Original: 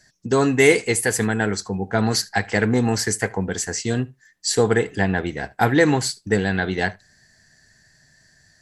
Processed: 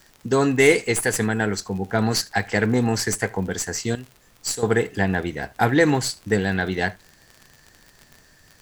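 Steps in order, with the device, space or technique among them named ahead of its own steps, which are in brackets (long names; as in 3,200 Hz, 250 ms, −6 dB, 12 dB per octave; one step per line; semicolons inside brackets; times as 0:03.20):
0:03.95–0:04.63: first-order pre-emphasis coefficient 0.8
record under a worn stylus (stylus tracing distortion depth 0.023 ms; surface crackle 39 per second −31 dBFS; pink noise bed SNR 34 dB)
level −1 dB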